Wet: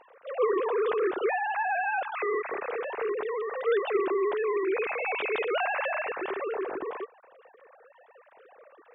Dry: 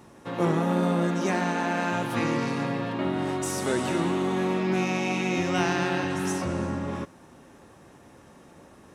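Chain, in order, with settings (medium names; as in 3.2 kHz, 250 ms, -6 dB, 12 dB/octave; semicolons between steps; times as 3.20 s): formants replaced by sine waves; trim -2.5 dB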